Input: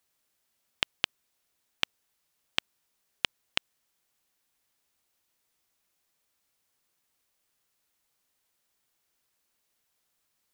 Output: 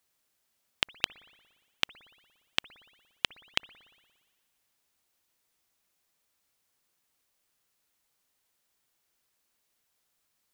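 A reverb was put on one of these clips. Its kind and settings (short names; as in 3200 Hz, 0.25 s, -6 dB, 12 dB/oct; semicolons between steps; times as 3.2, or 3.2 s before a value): spring tank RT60 1.5 s, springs 58 ms, chirp 75 ms, DRR 20 dB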